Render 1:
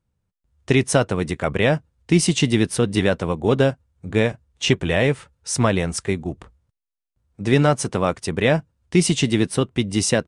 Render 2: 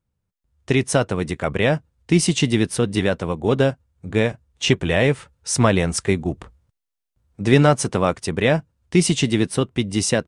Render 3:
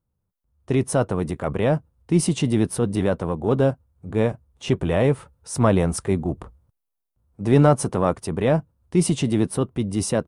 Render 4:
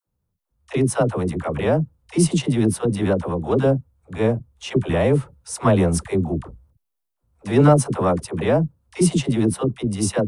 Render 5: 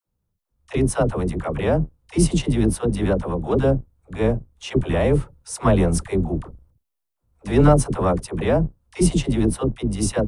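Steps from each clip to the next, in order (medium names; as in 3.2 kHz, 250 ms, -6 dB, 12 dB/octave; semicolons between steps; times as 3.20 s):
gain riding 2 s
high-order bell 3.6 kHz -10 dB 2.6 oct; transient shaper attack -4 dB, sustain +2 dB
phase dispersion lows, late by 74 ms, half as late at 470 Hz; trim +1.5 dB
octave divider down 2 oct, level -5 dB; trim -1 dB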